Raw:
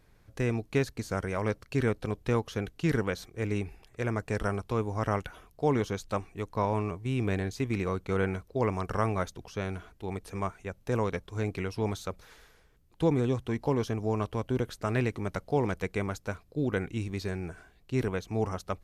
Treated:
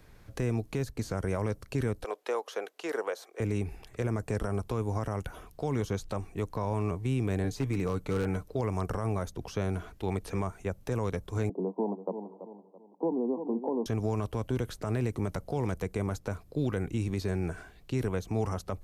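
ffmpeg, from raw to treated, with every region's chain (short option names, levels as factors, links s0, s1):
-filter_complex "[0:a]asettb=1/sr,asplit=3[s0][s1][s2];[s0]atrim=end=2.044[s3];[s1]atrim=start=2.04:end=3.4,asetpts=PTS-STARTPTS,afade=t=in:d=0.004:c=qsin,afade=t=out:st=1.356:d=0.004:c=qsin,highpass=f=480:w=0.5412,highpass=f=480:w=1.3066,highshelf=f=5600:g=-7[s4];[s2]atrim=start=3.396[s5];[s3][s4]acrossfade=d=0.004:c1=hsin:c2=qsin[s6];[s6][s5]acrossfade=d=0.004:c1=qsin:c2=hsin,asettb=1/sr,asplit=3[s7][s8][s9];[s7]atrim=end=7.434[s10];[s8]atrim=start=7.43:end=8.53,asetpts=PTS-STARTPTS,afade=t=in:d=0.004:c=qsin,afade=t=out:st=1.096:d=0.004:c=qsin,aecho=1:1:6.8:0.42,atrim=end_sample=48510,aeval=exprs='0.0891*(abs(mod(val(0)/0.0891+3,4)-2)-1)':c=same[s11];[s9]atrim=start=8.526[s12];[s10][s11]acrossfade=d=0.004:c1=hsin:c2=qsin[s13];[s13][s12]acrossfade=d=0.004:c1=qsin:c2=hsin,asettb=1/sr,asplit=3[s14][s15][s16];[s14]atrim=end=11.494[s17];[s15]atrim=start=11.49:end=13.86,asetpts=PTS-STARTPTS,afade=t=in:d=0.004:c=qsin,afade=t=out:st=2.366:d=0.004:c=qsin,asuperpass=centerf=430:order=20:qfactor=0.54,aecho=1:1:333|666|999:0.2|0.0678|0.0231,atrim=end_sample=104517[s18];[s16]atrim=start=13.856[s19];[s17][s18]acrossfade=d=0.004:c1=hsin:c2=qsin[s20];[s20][s19]acrossfade=d=0.004:c1=qsin:c2=hsin,acrossover=split=130|1100|6400[s21][s22][s23][s24];[s21]acompressor=threshold=0.0112:ratio=4[s25];[s22]acompressor=threshold=0.0178:ratio=4[s26];[s23]acompressor=threshold=0.00251:ratio=4[s27];[s24]acompressor=threshold=0.00141:ratio=4[s28];[s25][s26][s27][s28]amix=inputs=4:normalize=0,alimiter=level_in=1.5:limit=0.0631:level=0:latency=1:release=32,volume=0.668,volume=2.11"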